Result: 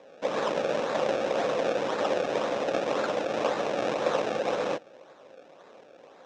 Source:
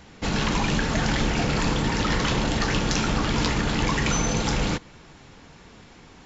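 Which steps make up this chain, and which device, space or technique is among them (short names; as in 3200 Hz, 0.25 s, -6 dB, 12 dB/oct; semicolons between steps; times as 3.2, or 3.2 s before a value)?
circuit-bent sampling toy (decimation with a swept rate 30×, swing 100% 1.9 Hz; speaker cabinet 530–5200 Hz, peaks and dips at 540 Hz +10 dB, 920 Hz -5 dB, 1400 Hz -4 dB, 2000 Hz -7 dB, 3100 Hz -5 dB, 4500 Hz -10 dB); gain +1.5 dB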